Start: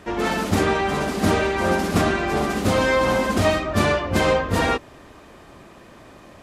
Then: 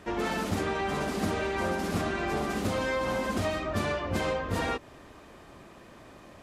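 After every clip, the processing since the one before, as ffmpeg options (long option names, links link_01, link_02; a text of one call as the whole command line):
ffmpeg -i in.wav -af "acompressor=threshold=-21dB:ratio=6,volume=-5dB" out.wav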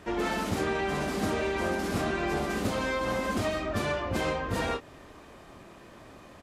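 ffmpeg -i in.wav -filter_complex "[0:a]asplit=2[link_01][link_02];[link_02]adelay=26,volume=-8dB[link_03];[link_01][link_03]amix=inputs=2:normalize=0" out.wav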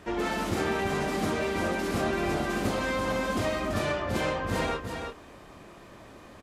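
ffmpeg -i in.wav -af "aecho=1:1:335:0.501" out.wav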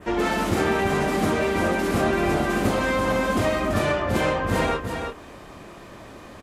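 ffmpeg -i in.wav -af "adynamicequalizer=threshold=0.00282:dfrequency=4800:dqfactor=1:tfrequency=4800:tqfactor=1:attack=5:release=100:ratio=0.375:range=2:mode=cutabove:tftype=bell,volume=6.5dB" out.wav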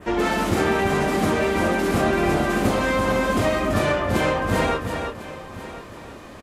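ffmpeg -i in.wav -af "aecho=1:1:1049:0.158,volume=1.5dB" out.wav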